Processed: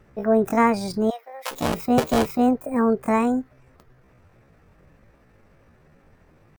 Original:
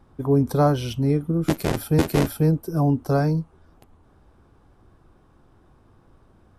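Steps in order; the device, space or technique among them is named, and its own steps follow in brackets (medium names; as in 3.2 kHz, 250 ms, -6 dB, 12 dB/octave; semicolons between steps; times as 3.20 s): 1.11–1.54 s: Bessel high-pass 680 Hz, order 6; chipmunk voice (pitch shift +8 st)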